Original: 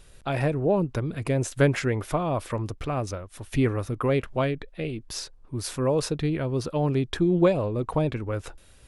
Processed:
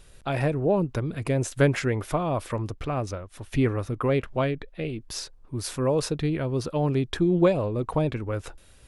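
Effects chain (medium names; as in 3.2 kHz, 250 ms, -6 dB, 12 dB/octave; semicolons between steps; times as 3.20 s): 2.68–5.00 s: treble shelf 7.5 kHz -6 dB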